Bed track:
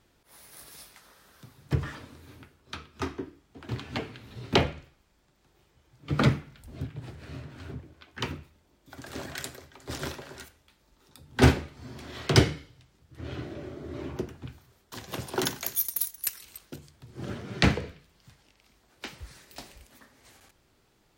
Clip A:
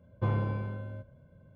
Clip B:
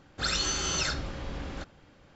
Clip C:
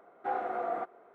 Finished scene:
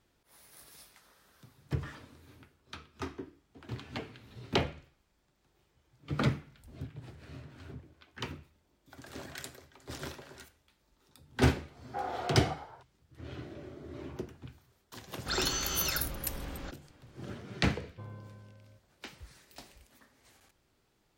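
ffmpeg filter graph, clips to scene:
ffmpeg -i bed.wav -i cue0.wav -i cue1.wav -i cue2.wav -filter_complex "[0:a]volume=-6.5dB[link_01];[3:a]asplit=7[link_02][link_03][link_04][link_05][link_06][link_07][link_08];[link_03]adelay=111,afreqshift=72,volume=-9dB[link_09];[link_04]adelay=222,afreqshift=144,volume=-15dB[link_10];[link_05]adelay=333,afreqshift=216,volume=-21dB[link_11];[link_06]adelay=444,afreqshift=288,volume=-27.1dB[link_12];[link_07]adelay=555,afreqshift=360,volume=-33.1dB[link_13];[link_08]adelay=666,afreqshift=432,volume=-39.1dB[link_14];[link_02][link_09][link_10][link_11][link_12][link_13][link_14]amix=inputs=7:normalize=0,atrim=end=1.14,asetpts=PTS-STARTPTS,volume=-4dB,afade=type=in:duration=0.004:curve=hsin,afade=type=out:start_time=1.136:duration=0.004:curve=hsin,adelay=11690[link_15];[2:a]atrim=end=2.15,asetpts=PTS-STARTPTS,volume=-4dB,afade=type=in:duration=0.004:curve=hsin,afade=type=out:start_time=2.146:duration=0.004:curve=hsin,adelay=15070[link_16];[1:a]atrim=end=1.55,asetpts=PTS-STARTPTS,volume=-17dB,afade=type=in:duration=0.004:curve=hsin,afade=type=out:start_time=1.546:duration=0.004:curve=hsin,adelay=17760[link_17];[link_01][link_15][link_16][link_17]amix=inputs=4:normalize=0" out.wav

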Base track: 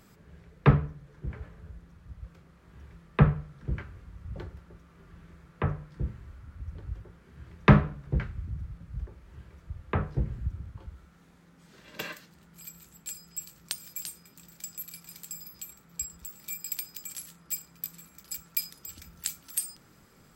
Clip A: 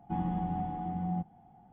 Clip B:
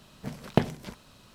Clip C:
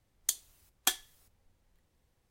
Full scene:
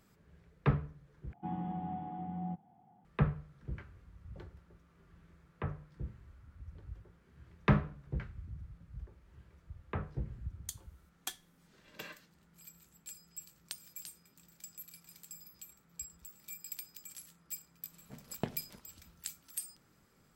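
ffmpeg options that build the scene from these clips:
ffmpeg -i bed.wav -i cue0.wav -i cue1.wav -i cue2.wav -filter_complex "[0:a]volume=-9.5dB[link_01];[1:a]highpass=110[link_02];[link_01]asplit=2[link_03][link_04];[link_03]atrim=end=1.334[link_05];[link_02]atrim=end=1.72,asetpts=PTS-STARTPTS,volume=-5.5dB[link_06];[link_04]atrim=start=3.046[link_07];[3:a]atrim=end=2.3,asetpts=PTS-STARTPTS,volume=-12.5dB,afade=type=in:duration=0.004:curve=hsin,afade=type=out:start_time=2.296:duration=0.004:curve=hsin,adelay=10400[link_08];[2:a]atrim=end=1.34,asetpts=PTS-STARTPTS,volume=-14.5dB,afade=type=in:duration=0.1,afade=type=out:start_time=1.24:duration=0.1,adelay=17860[link_09];[link_05][link_06]acrossfade=duration=0.004:curve1=hsin:curve2=hsin[link_10];[link_10][link_07]acrossfade=duration=0.004:curve1=hsin:curve2=hsin[link_11];[link_11][link_08][link_09]amix=inputs=3:normalize=0" out.wav

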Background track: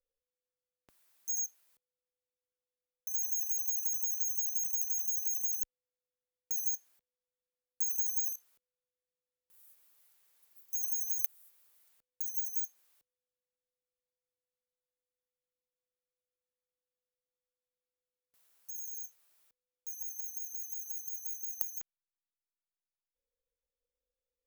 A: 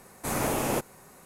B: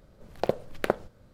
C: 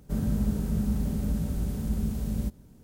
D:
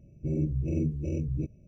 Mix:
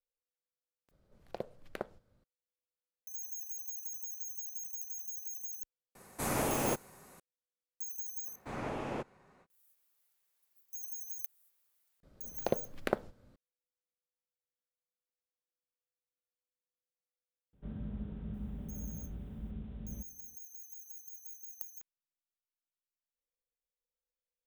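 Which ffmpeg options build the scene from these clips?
ffmpeg -i bed.wav -i cue0.wav -i cue1.wav -i cue2.wav -filter_complex "[2:a]asplit=2[link_01][link_02];[1:a]asplit=2[link_03][link_04];[0:a]volume=-9dB[link_05];[link_04]lowpass=3100[link_06];[link_02]equalizer=frequency=260:width_type=o:width=0.37:gain=5.5[link_07];[3:a]aresample=8000,aresample=44100[link_08];[link_05]asplit=2[link_09][link_10];[link_09]atrim=end=0.914[link_11];[link_01]atrim=end=1.33,asetpts=PTS-STARTPTS,volume=-14.5dB[link_12];[link_10]atrim=start=2.236[link_13];[link_03]atrim=end=1.25,asetpts=PTS-STARTPTS,volume=-4.5dB,afade=type=in:duration=0.004:curve=hsin,afade=type=out:start_time=1.246:duration=0.004:curve=hsin,adelay=5950[link_14];[link_06]atrim=end=1.25,asetpts=PTS-STARTPTS,volume=-10dB,afade=type=in:duration=0.05,afade=type=out:start_time=1.2:duration=0.05,adelay=8220[link_15];[link_07]atrim=end=1.33,asetpts=PTS-STARTPTS,volume=-6.5dB,afade=type=in:duration=0.004:curve=hsin,afade=type=out:start_time=1.326:duration=0.004:curve=hsin,adelay=12030[link_16];[link_08]atrim=end=2.83,asetpts=PTS-STARTPTS,volume=-14.5dB,afade=type=in:duration=0.004:curve=hsin,afade=type=out:start_time=2.826:duration=0.004:curve=hsin,adelay=17530[link_17];[link_11][link_12]acrossfade=duration=0.004:curve1=hsin:curve2=hsin[link_18];[link_18][link_13]acrossfade=duration=0.004:curve1=hsin:curve2=hsin[link_19];[link_19][link_14][link_15][link_16][link_17]amix=inputs=5:normalize=0" out.wav

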